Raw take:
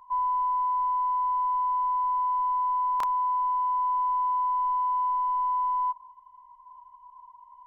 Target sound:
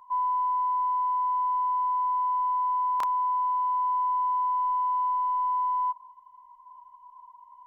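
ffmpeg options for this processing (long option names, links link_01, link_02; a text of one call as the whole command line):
ffmpeg -i in.wav -af "lowshelf=frequency=100:gain=-9" out.wav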